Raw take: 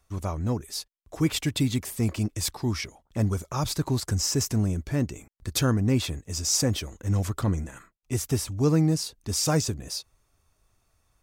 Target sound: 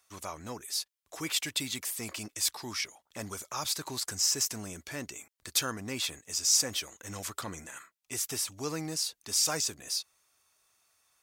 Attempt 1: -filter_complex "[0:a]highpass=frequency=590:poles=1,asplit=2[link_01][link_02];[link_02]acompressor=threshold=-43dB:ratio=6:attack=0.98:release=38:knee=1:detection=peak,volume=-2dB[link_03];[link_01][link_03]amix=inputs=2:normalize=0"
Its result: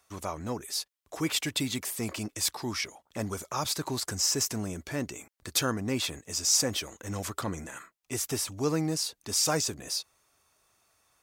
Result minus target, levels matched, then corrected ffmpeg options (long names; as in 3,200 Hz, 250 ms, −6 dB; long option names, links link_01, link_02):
500 Hz band +6.0 dB
-filter_complex "[0:a]highpass=frequency=1900:poles=1,asplit=2[link_01][link_02];[link_02]acompressor=threshold=-43dB:ratio=6:attack=0.98:release=38:knee=1:detection=peak,volume=-2dB[link_03];[link_01][link_03]amix=inputs=2:normalize=0"